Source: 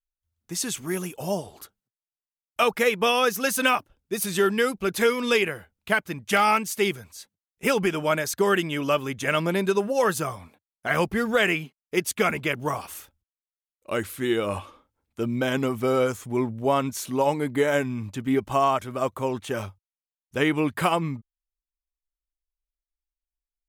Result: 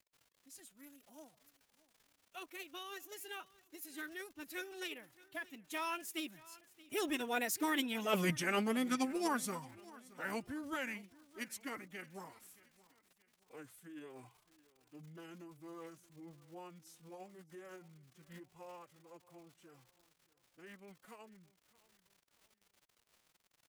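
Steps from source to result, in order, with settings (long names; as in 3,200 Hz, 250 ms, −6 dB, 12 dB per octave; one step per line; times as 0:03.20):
source passing by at 0:08.16, 32 m/s, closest 3.3 metres
high-shelf EQ 7,700 Hz +7 dB
reversed playback
downward compressor 16 to 1, threshold −38 dBFS, peak gain reduction 20 dB
reversed playback
surface crackle 110 per second −59 dBFS
phase-vocoder pitch shift with formants kept +6 semitones
repeating echo 624 ms, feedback 38%, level −21 dB
level +8.5 dB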